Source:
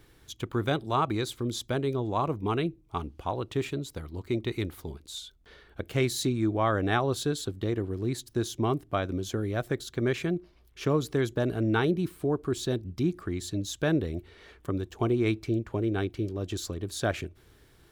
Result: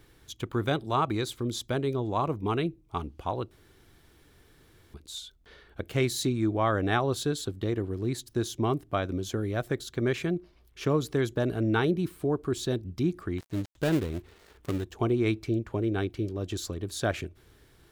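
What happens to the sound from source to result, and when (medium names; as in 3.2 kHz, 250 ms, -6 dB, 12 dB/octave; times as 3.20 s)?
3.51–4.94 s: room tone
13.38–14.84 s: dead-time distortion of 0.23 ms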